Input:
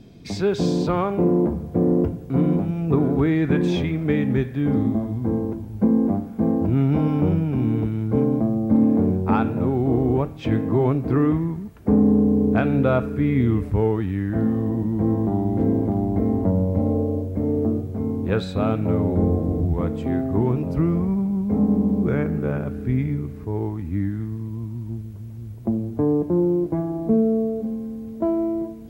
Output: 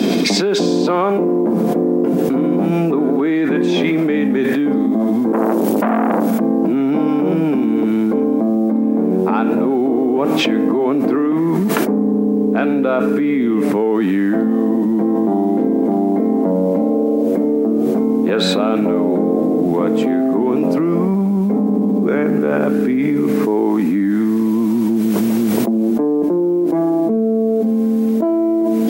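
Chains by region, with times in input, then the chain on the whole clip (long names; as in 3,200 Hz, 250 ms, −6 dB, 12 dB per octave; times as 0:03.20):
0:05.32–0:06.40: high-shelf EQ 5,000 Hz +10 dB + downward compressor 2.5 to 1, threshold −24 dBFS + saturating transformer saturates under 820 Hz
whole clip: Butterworth high-pass 210 Hz 36 dB per octave; envelope flattener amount 100%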